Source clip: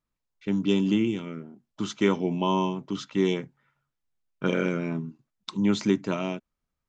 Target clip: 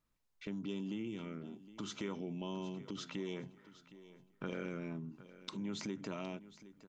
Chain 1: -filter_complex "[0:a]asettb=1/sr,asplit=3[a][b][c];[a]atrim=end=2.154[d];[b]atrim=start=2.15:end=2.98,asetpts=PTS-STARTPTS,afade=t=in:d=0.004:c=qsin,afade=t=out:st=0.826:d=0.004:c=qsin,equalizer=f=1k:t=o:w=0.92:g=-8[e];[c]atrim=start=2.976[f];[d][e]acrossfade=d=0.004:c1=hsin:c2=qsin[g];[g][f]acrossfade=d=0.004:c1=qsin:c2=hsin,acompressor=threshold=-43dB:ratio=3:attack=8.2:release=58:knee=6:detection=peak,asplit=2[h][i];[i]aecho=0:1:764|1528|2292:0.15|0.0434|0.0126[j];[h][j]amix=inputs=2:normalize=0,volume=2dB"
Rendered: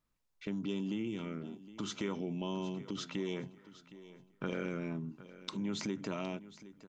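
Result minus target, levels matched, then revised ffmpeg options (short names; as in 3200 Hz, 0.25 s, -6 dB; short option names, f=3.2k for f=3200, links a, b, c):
compressor: peak gain reduction -4 dB
-filter_complex "[0:a]asettb=1/sr,asplit=3[a][b][c];[a]atrim=end=2.154[d];[b]atrim=start=2.15:end=2.98,asetpts=PTS-STARTPTS,afade=t=in:d=0.004:c=qsin,afade=t=out:st=0.826:d=0.004:c=qsin,equalizer=f=1k:t=o:w=0.92:g=-8[e];[c]atrim=start=2.976[f];[d][e]acrossfade=d=0.004:c1=hsin:c2=qsin[g];[g][f]acrossfade=d=0.004:c1=qsin:c2=hsin,acompressor=threshold=-49dB:ratio=3:attack=8.2:release=58:knee=6:detection=peak,asplit=2[h][i];[i]aecho=0:1:764|1528|2292:0.15|0.0434|0.0126[j];[h][j]amix=inputs=2:normalize=0,volume=2dB"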